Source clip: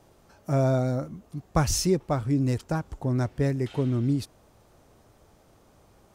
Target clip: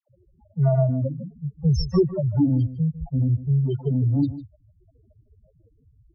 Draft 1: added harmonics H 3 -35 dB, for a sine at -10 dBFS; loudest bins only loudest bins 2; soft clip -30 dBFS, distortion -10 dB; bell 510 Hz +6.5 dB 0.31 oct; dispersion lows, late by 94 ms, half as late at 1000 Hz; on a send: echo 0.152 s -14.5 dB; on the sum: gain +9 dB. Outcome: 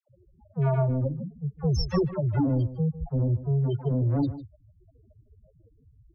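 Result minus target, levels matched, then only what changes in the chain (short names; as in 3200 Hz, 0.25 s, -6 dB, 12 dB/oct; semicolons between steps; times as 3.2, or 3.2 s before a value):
soft clip: distortion +11 dB
change: soft clip -20.5 dBFS, distortion -21 dB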